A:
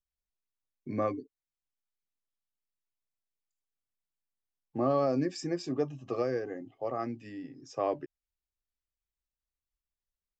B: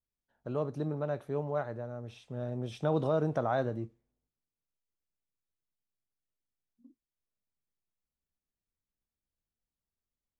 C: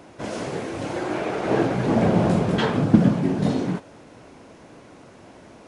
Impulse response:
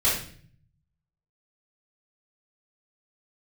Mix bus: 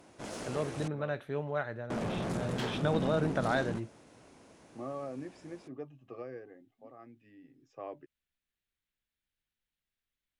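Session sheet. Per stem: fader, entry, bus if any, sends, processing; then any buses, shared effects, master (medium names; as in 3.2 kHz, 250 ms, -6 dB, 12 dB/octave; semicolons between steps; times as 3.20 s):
-12.5 dB, 0.00 s, no send, resonant high shelf 3.7 kHz -8.5 dB, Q 1.5; auto duck -7 dB, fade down 0.45 s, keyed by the second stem
-1.5 dB, 0.00 s, no send, high-order bell 2.4 kHz +10 dB
-8.0 dB, 0.00 s, muted 0.88–1.90 s, no send, treble shelf 5.7 kHz +10.5 dB; valve stage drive 24 dB, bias 0.7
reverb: none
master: none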